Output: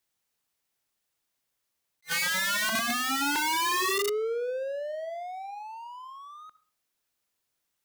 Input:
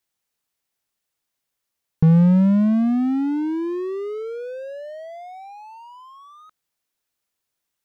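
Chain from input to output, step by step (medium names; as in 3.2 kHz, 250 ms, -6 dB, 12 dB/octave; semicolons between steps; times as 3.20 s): 2.69–3.36 s: Butterworth band-stop 650 Hz, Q 1; on a send at -16 dB: reverberation RT60 0.40 s, pre-delay 58 ms; on the sum: integer overflow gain 23 dB; attacks held to a fixed rise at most 490 dB/s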